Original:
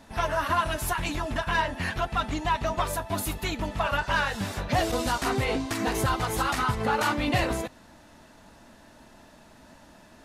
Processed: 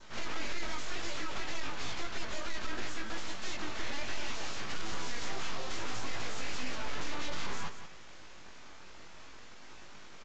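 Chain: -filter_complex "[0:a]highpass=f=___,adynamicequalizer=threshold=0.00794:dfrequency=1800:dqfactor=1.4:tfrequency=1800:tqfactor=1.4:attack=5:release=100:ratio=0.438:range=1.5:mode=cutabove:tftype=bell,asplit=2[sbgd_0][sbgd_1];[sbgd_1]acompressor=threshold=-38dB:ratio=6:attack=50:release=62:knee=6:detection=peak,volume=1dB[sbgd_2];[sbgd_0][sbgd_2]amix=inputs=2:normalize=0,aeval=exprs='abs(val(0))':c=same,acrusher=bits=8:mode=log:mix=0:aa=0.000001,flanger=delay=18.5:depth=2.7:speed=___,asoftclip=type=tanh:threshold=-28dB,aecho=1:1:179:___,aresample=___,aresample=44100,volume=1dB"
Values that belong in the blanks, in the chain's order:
350, 0.63, 0.299, 16000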